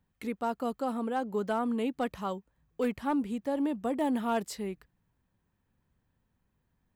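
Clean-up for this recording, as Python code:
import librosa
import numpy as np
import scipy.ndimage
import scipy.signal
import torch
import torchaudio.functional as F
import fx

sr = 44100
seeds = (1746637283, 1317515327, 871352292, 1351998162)

y = fx.fix_declip(x, sr, threshold_db=-22.0)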